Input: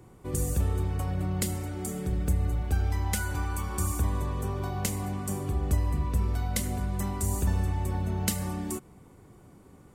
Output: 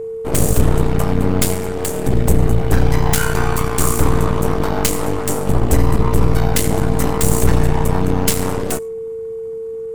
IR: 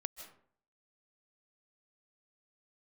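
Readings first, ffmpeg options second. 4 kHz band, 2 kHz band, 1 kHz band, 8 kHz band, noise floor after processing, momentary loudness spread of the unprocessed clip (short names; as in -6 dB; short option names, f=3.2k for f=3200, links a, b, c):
+14.0 dB, +14.0 dB, +14.5 dB, +13.0 dB, -27 dBFS, 4 LU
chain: -filter_complex "[0:a]asplit=2[a][b];[1:a]atrim=start_sample=2205,asetrate=74970,aresample=44100[c];[b][c]afir=irnorm=-1:irlink=0,volume=-1dB[d];[a][d]amix=inputs=2:normalize=0,aeval=exprs='0.316*(cos(1*acos(clip(val(0)/0.316,-1,1)))-cos(1*PI/2))+0.0158*(cos(7*acos(clip(val(0)/0.316,-1,1)))-cos(7*PI/2))+0.112*(cos(8*acos(clip(val(0)/0.316,-1,1)))-cos(8*PI/2))':c=same,aeval=exprs='val(0)+0.0355*sin(2*PI*450*n/s)':c=same,volume=5.5dB"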